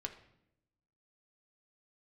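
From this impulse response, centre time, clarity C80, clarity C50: 11 ms, 14.0 dB, 11.0 dB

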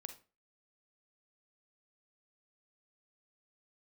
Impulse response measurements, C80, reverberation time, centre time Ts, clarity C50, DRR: 17.5 dB, 0.35 s, 10 ms, 10.5 dB, 7.0 dB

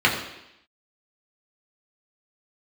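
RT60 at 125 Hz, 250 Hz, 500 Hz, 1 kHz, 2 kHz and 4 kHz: 0.70, 0.85, 0.80, 0.85, 0.90, 0.90 s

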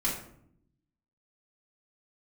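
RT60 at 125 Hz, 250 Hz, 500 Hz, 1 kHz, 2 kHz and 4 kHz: 1.2, 1.1, 0.75, 0.60, 0.50, 0.40 s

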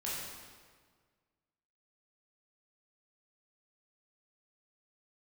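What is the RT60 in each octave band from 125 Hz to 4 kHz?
1.9, 1.8, 1.7, 1.6, 1.4, 1.3 s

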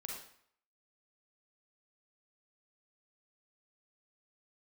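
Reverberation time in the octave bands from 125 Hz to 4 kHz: 0.60, 0.60, 0.60, 0.65, 0.60, 0.55 s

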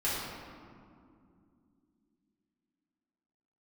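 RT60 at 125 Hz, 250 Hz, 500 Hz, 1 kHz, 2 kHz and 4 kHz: 3.3, 4.0, 2.7, 2.2, 1.6, 1.1 s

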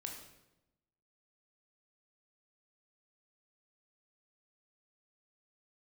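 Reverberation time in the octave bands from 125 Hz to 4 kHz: 1.2, 1.2, 1.0, 0.85, 0.80, 0.75 s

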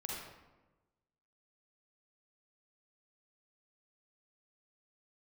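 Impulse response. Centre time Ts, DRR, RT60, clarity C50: 81 ms, -4.0 dB, 1.1 s, -2.0 dB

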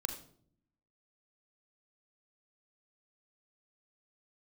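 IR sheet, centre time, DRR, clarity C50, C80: 15 ms, 6.0 dB, 9.0 dB, 12.5 dB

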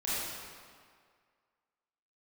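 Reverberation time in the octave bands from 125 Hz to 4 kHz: 1.7, 1.8, 1.9, 2.0, 1.8, 1.5 s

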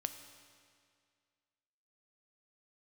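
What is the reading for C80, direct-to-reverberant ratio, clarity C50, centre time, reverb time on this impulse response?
10.5 dB, 8.0 dB, 9.5 dB, 22 ms, 2.1 s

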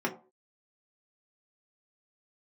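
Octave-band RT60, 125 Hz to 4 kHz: 0.30, 0.40, 0.40, 0.35, 0.20, 0.15 s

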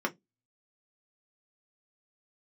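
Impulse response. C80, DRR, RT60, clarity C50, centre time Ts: 36.0 dB, 0.0 dB, 0.15 s, 24.0 dB, 7 ms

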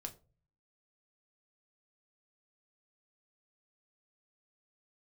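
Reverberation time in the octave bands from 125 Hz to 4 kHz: 0.85, 0.50, 0.40, 0.30, 0.25, 0.20 s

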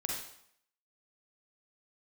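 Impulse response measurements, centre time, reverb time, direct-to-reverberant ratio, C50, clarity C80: 52 ms, 0.70 s, -2.0 dB, 0.5 dB, 5.0 dB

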